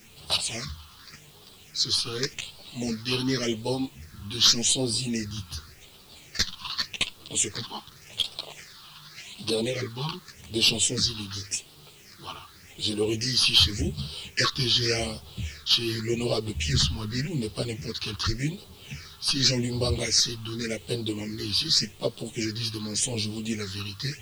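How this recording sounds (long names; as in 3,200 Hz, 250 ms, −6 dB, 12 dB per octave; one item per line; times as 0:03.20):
phaser sweep stages 6, 0.87 Hz, lowest notch 530–1,900 Hz
a quantiser's noise floor 10 bits, dither triangular
a shimmering, thickened sound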